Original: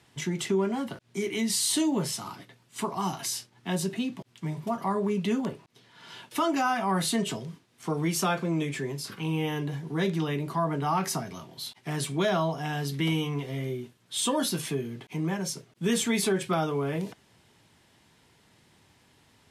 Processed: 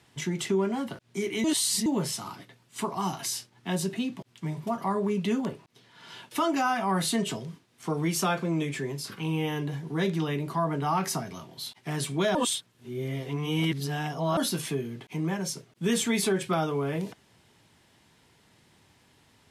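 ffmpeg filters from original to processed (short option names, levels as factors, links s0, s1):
-filter_complex "[0:a]asplit=5[s0][s1][s2][s3][s4];[s0]atrim=end=1.442[s5];[s1]atrim=start=1.438:end=1.862,asetpts=PTS-STARTPTS,areverse[s6];[s2]atrim=start=1.858:end=12.352[s7];[s3]atrim=start=12.348:end=14.372,asetpts=PTS-STARTPTS,areverse[s8];[s4]atrim=start=14.368[s9];[s5][s6]acrossfade=d=0.004:c1=hsin:c2=hsin[s10];[s10][s7]acrossfade=d=0.004:c1=hsin:c2=hsin[s11];[s11][s8]acrossfade=d=0.004:c1=hsin:c2=hsin[s12];[s12][s9]acrossfade=d=0.004:c1=hsin:c2=hsin"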